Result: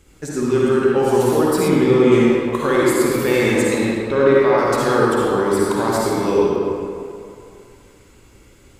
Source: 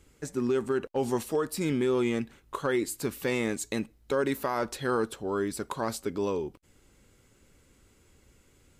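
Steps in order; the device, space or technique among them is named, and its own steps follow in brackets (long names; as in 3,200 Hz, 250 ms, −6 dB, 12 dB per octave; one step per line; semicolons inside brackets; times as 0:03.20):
0:03.61–0:04.57: low-pass filter 5,300 Hz → 2,800 Hz 12 dB per octave
stairwell (convolution reverb RT60 2.5 s, pre-delay 47 ms, DRR −6 dB)
0:01.68–0:02.12: high-shelf EQ 5,800 Hz −9.5 dB
level +6.5 dB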